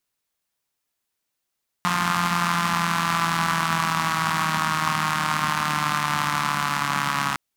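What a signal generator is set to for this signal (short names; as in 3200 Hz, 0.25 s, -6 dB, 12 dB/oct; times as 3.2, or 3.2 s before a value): four-cylinder engine model, changing speed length 5.51 s, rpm 5300, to 4200, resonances 190/1100 Hz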